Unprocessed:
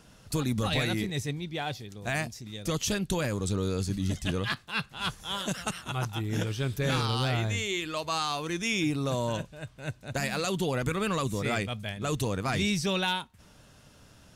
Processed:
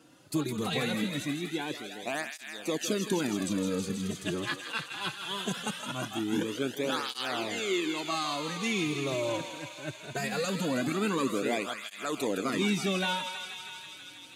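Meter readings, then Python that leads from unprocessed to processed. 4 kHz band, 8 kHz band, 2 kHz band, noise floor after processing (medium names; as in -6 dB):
-1.0 dB, -1.5 dB, -1.0 dB, -48 dBFS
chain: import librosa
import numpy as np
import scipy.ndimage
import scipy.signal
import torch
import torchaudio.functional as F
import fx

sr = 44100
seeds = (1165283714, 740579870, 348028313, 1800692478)

y = scipy.signal.sosfilt(scipy.signal.butter(2, 210.0, 'highpass', fs=sr, output='sos'), x)
y = fx.peak_eq(y, sr, hz=280.0, db=9.0, octaves=1.0)
y = fx.notch(y, sr, hz=5500.0, q=10.0)
y = fx.echo_thinned(y, sr, ms=161, feedback_pct=84, hz=720.0, wet_db=-7.0)
y = fx.flanger_cancel(y, sr, hz=0.21, depth_ms=4.9)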